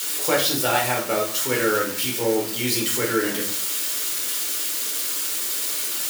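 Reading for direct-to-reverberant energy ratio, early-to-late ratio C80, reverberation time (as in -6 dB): -2.0 dB, 11.0 dB, 0.55 s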